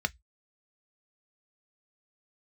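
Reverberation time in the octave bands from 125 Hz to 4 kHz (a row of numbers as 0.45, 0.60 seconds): 0.25, 0.10, 0.10, 0.10, 0.15, 0.15 seconds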